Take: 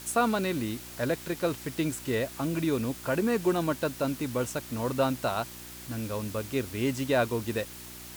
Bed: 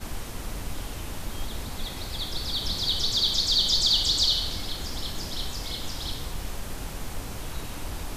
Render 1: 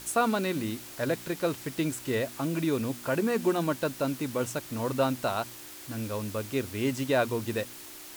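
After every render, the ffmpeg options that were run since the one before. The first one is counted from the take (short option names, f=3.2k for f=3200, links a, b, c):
-af "bandreject=f=60:t=h:w=4,bandreject=f=120:t=h:w=4,bandreject=f=180:t=h:w=4,bandreject=f=240:t=h:w=4"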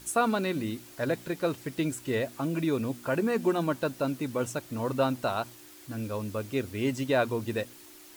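-af "afftdn=nr=7:nf=-45"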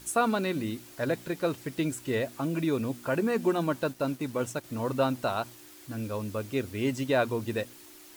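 -filter_complex "[0:a]asettb=1/sr,asplit=3[a][b][c];[a]atrim=end=3.914[d];[b]atrim=start=3.91:end=4.64,asetpts=PTS-STARTPTS,afade=t=in:d=0.004:c=qsin,afade=t=out:st=0.726:d=0.004:c=qsin,aeval=exprs='sgn(val(0))*max(abs(val(0))-0.00237,0)':c=same[e];[c]atrim=start=4.636[f];[d][e]acrossfade=d=0.004:c1=hsin:c2=qsin[g];[g][f]acrossfade=d=0.004:c1=qsin:c2=hsin"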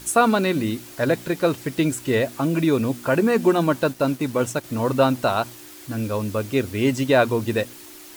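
-af "volume=8.5dB"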